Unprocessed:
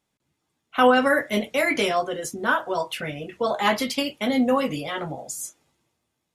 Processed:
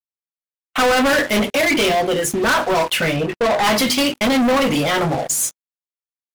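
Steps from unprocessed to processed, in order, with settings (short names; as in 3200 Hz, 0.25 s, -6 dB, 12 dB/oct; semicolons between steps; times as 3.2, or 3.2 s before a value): notches 50/100/150/200/250/300/350/400 Hz; 1.5–2.31 envelope phaser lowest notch 180 Hz, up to 1300 Hz, full sweep at -23.5 dBFS; sample leveller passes 3; 3.16–3.64 high shelf 3000 Hz -7.5 dB; gate -28 dBFS, range -39 dB; sample leveller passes 3; gain -5.5 dB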